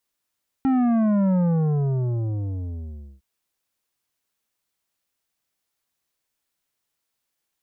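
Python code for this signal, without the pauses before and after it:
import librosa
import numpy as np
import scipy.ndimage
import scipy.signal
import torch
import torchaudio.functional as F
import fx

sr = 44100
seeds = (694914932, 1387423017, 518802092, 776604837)

y = fx.sub_drop(sr, level_db=-18, start_hz=270.0, length_s=2.56, drive_db=10.0, fade_s=1.87, end_hz=65.0)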